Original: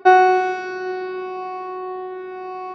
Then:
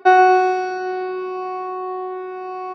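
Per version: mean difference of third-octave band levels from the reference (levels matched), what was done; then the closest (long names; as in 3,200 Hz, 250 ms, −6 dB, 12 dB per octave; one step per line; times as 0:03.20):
1.5 dB: high-pass filter 73 Hz
low-shelf EQ 180 Hz −8.5 dB
repeating echo 119 ms, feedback 55%, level −11 dB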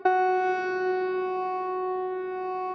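3.5 dB: high-shelf EQ 3,600 Hz −8.5 dB
notch filter 980 Hz, Q 15
downward compressor 12 to 1, threshold −20 dBFS, peak gain reduction 12.5 dB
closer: first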